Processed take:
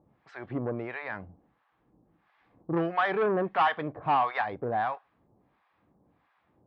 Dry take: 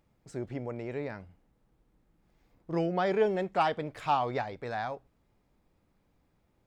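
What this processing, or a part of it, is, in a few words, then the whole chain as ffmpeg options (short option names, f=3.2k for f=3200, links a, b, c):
guitar amplifier with harmonic tremolo: -filter_complex "[0:a]acrossover=split=800[a][b];[a]aeval=exprs='val(0)*(1-1/2+1/2*cos(2*PI*1.5*n/s))':c=same[c];[b]aeval=exprs='val(0)*(1-1/2-1/2*cos(2*PI*1.5*n/s))':c=same[d];[c][d]amix=inputs=2:normalize=0,asoftclip=type=tanh:threshold=-32dB,highpass=94,equalizer=f=310:t=q:w=4:g=3,equalizer=f=760:t=q:w=4:g=5,equalizer=f=1.1k:t=q:w=4:g=8,equalizer=f=1.7k:t=q:w=4:g=6,lowpass=f=3.5k:w=0.5412,lowpass=f=3.5k:w=1.3066,volume=8dB"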